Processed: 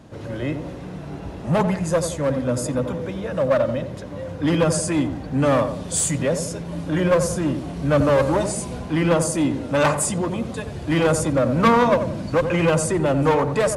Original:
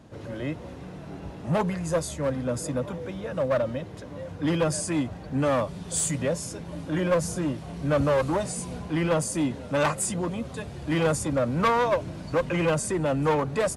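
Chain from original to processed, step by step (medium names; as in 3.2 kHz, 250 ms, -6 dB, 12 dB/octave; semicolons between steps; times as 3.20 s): 11.64–12.28 s: peaking EQ 220 Hz +13.5 dB 0.35 oct; on a send: filtered feedback delay 88 ms, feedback 48%, low-pass 990 Hz, level -7 dB; on the sum: trim +5 dB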